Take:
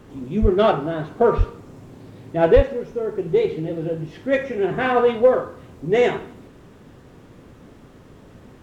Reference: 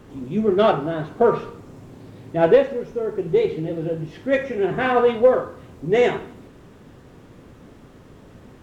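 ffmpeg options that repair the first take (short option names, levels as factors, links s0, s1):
-filter_complex "[0:a]asplit=3[s0][s1][s2];[s0]afade=t=out:st=0.41:d=0.02[s3];[s1]highpass=f=140:w=0.5412,highpass=f=140:w=1.3066,afade=t=in:st=0.41:d=0.02,afade=t=out:st=0.53:d=0.02[s4];[s2]afade=t=in:st=0.53:d=0.02[s5];[s3][s4][s5]amix=inputs=3:normalize=0,asplit=3[s6][s7][s8];[s6]afade=t=out:st=1.37:d=0.02[s9];[s7]highpass=f=140:w=0.5412,highpass=f=140:w=1.3066,afade=t=in:st=1.37:d=0.02,afade=t=out:st=1.49:d=0.02[s10];[s8]afade=t=in:st=1.49:d=0.02[s11];[s9][s10][s11]amix=inputs=3:normalize=0,asplit=3[s12][s13][s14];[s12]afade=t=out:st=2.55:d=0.02[s15];[s13]highpass=f=140:w=0.5412,highpass=f=140:w=1.3066,afade=t=in:st=2.55:d=0.02,afade=t=out:st=2.67:d=0.02[s16];[s14]afade=t=in:st=2.67:d=0.02[s17];[s15][s16][s17]amix=inputs=3:normalize=0"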